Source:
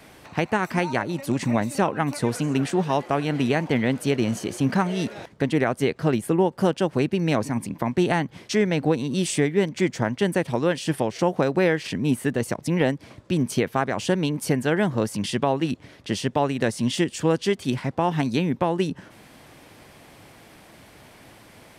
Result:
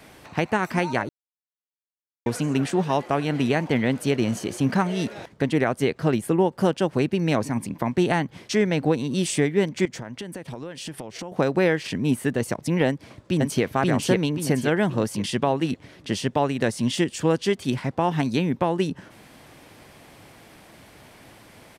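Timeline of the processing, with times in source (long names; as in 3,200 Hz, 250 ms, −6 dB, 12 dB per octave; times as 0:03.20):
0:01.09–0:02.26: silence
0:09.85–0:11.32: downward compressor 8 to 1, threshold −31 dBFS
0:12.87–0:13.63: delay throw 530 ms, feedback 40%, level −0.5 dB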